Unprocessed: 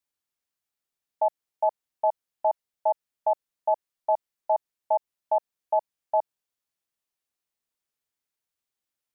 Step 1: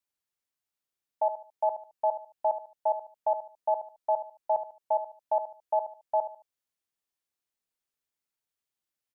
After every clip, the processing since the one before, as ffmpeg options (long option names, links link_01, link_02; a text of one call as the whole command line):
ffmpeg -i in.wav -af "aecho=1:1:73|146|219:0.282|0.0846|0.0254,volume=-3dB" out.wav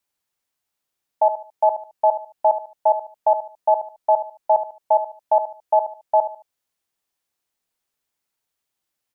ffmpeg -i in.wav -af "equalizer=frequency=800:width_type=o:width=0.77:gain=2.5,volume=8dB" out.wav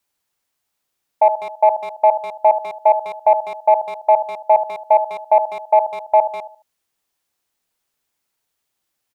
ffmpeg -i in.wav -filter_complex "[0:a]asplit=2[link_01][link_02];[link_02]adelay=200,highpass=300,lowpass=3400,asoftclip=type=hard:threshold=-16.5dB,volume=-13dB[link_03];[link_01][link_03]amix=inputs=2:normalize=0,acontrast=24" out.wav